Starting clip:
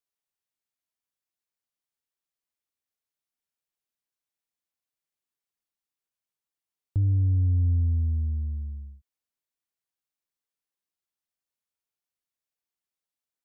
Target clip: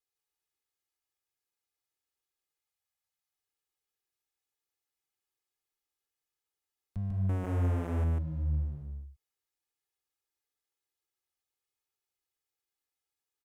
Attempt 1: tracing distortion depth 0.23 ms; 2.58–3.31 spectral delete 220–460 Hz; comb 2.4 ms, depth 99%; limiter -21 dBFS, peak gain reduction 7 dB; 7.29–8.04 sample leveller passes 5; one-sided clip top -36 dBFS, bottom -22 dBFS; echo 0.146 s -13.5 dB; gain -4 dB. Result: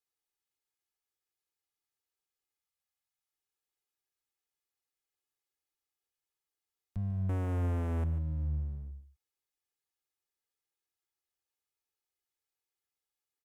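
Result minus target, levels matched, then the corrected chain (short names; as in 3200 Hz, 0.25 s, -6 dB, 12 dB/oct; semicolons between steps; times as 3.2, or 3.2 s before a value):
echo-to-direct -11 dB
tracing distortion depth 0.23 ms; 2.58–3.31 spectral delete 220–460 Hz; comb 2.4 ms, depth 99%; limiter -21 dBFS, peak gain reduction 7 dB; 7.29–8.04 sample leveller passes 5; one-sided clip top -36 dBFS, bottom -22 dBFS; echo 0.146 s -2.5 dB; gain -4 dB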